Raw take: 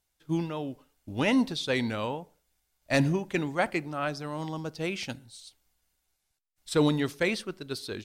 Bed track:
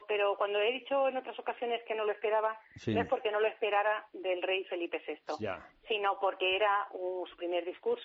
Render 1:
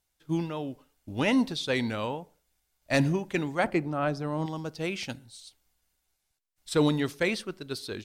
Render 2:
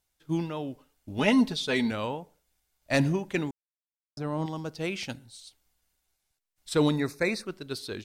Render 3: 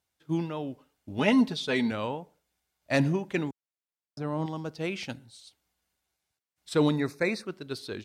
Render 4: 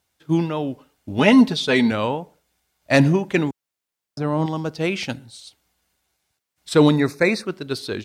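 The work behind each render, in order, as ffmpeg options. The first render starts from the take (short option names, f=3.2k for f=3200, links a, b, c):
-filter_complex "[0:a]asettb=1/sr,asplit=3[a][b][c];[a]atrim=end=3.644[d];[b]atrim=start=3.64:end=4.46,asetpts=PTS-STARTPTS,afade=t=in:d=0.004:c=qsin,afade=t=out:st=0.816:d=0.004:c=qsin,tiltshelf=f=1.4k:g=5.5[e];[c]atrim=start=4.456[f];[d][e]acrossfade=d=0.004:c1=hsin:c2=qsin[g];[g][f]acrossfade=d=0.004:c1=qsin:c2=hsin"
-filter_complex "[0:a]asettb=1/sr,asplit=3[a][b][c];[a]atrim=end=1.184[d];[b]atrim=start=1.18:end=1.91,asetpts=PTS-STARTPTS,afade=t=in:d=0.004:c=qsin,afade=t=out:st=0.726:d=0.004:c=qsin,aecho=1:1:4.7:0.65,atrim=end_sample=32193[e];[c]atrim=start=1.906[f];[d][e]acrossfade=d=0.004:c1=hsin:c2=qsin[g];[g][f]acrossfade=d=0.004:c1=qsin:c2=hsin,asettb=1/sr,asplit=3[h][i][j];[h]atrim=end=6.964[k];[i]atrim=start=6.96:end=7.46,asetpts=PTS-STARTPTS,afade=t=in:d=0.004:c=qsin,afade=t=out:st=0.496:d=0.004:c=qsin,asuperstop=centerf=3100:order=8:qfactor=2.8[l];[j]atrim=start=7.456[m];[k][l]acrossfade=d=0.004:c1=hsin:c2=qsin[n];[n][m]acrossfade=d=0.004:c1=qsin:c2=hsin,asplit=3[o][p][q];[o]atrim=end=3.51,asetpts=PTS-STARTPTS,afade=t=out:st=3.506:d=0.004:c=hsin[r];[p]atrim=start=3.51:end=4.17,asetpts=PTS-STARTPTS,volume=0[s];[q]atrim=start=4.17,asetpts=PTS-STARTPTS,afade=t=in:d=0.004:c=hsin[t];[r][s][t]concat=n=3:v=0:a=1"
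-af "highpass=77,highshelf=f=5.1k:g=-6.5"
-af "volume=9.5dB,alimiter=limit=-2dB:level=0:latency=1"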